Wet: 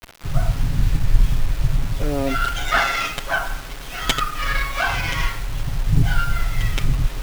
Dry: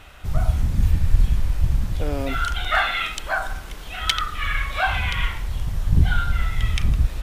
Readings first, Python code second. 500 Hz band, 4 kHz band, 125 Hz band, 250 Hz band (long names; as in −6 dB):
+3.5 dB, +0.5 dB, 0.0 dB, +3.5 dB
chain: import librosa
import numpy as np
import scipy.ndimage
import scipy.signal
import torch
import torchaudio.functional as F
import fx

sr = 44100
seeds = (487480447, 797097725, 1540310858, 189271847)

y = x + 0.86 * np.pad(x, (int(7.3 * sr / 1000.0), 0))[:len(x)]
y = fx.quant_dither(y, sr, seeds[0], bits=6, dither='none')
y = fx.running_max(y, sr, window=5)